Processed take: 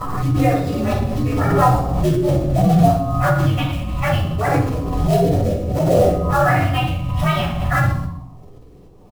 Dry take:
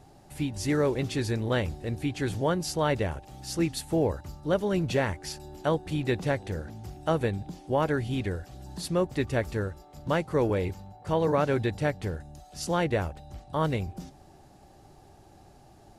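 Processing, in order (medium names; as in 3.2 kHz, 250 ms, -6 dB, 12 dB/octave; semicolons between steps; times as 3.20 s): frequency axis rescaled in octaves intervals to 128%; gate with hold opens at -49 dBFS; LFO low-pass sine 0.18 Hz 480–3400 Hz; plain phase-vocoder stretch 0.57×; LFO notch square 0.24 Hz 430–3100 Hz; short-mantissa float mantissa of 2-bit; feedback delay 64 ms, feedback 47%, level -10 dB; simulated room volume 620 m³, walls furnished, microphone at 6.5 m; swell ahead of each attack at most 31 dB/s; trim +4 dB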